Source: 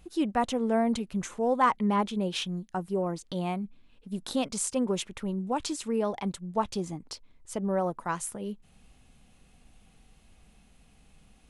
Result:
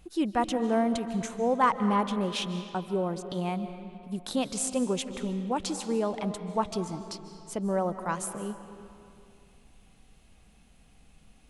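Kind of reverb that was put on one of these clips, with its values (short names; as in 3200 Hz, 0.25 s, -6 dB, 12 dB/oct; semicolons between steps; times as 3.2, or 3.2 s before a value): digital reverb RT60 2.5 s, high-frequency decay 0.65×, pre-delay 0.11 s, DRR 10 dB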